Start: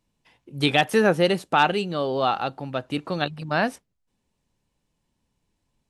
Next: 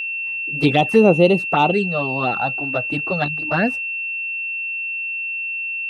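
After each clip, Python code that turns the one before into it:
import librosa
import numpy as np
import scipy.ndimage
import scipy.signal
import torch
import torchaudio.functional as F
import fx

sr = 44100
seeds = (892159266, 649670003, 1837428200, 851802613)

y = fx.high_shelf(x, sr, hz=2100.0, db=-11.5)
y = fx.env_flanger(y, sr, rest_ms=7.7, full_db=-18.0)
y = y + 10.0 ** (-31.0 / 20.0) * np.sin(2.0 * np.pi * 2700.0 * np.arange(len(y)) / sr)
y = F.gain(torch.from_numpy(y), 8.0).numpy()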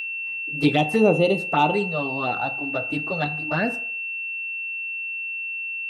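y = fx.high_shelf(x, sr, hz=5600.0, db=6.0)
y = fx.rev_fdn(y, sr, rt60_s=0.56, lf_ratio=0.75, hf_ratio=0.5, size_ms=20.0, drr_db=7.5)
y = F.gain(torch.from_numpy(y), -5.0).numpy()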